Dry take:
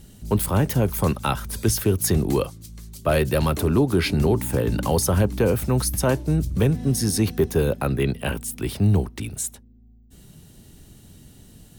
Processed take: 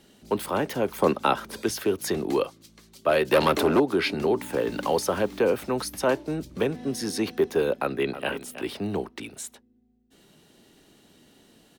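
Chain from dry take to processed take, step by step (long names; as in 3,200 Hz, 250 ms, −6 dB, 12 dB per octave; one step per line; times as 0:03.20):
0:01.02–0:01.62: parametric band 340 Hz +6.5 dB 2.7 octaves
0:03.31–0:03.80: leveller curve on the samples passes 2
0:04.53–0:05.39: bit-depth reduction 8 bits, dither triangular
three-way crossover with the lows and the highs turned down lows −23 dB, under 250 Hz, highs −12 dB, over 5,100 Hz
0:07.76–0:08.31: delay throw 320 ms, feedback 10%, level −12.5 dB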